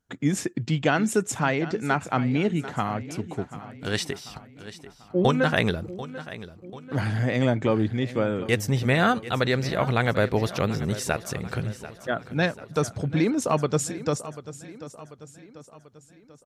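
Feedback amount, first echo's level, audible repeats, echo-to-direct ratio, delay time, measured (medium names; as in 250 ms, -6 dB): 50%, -15.0 dB, 4, -13.5 dB, 740 ms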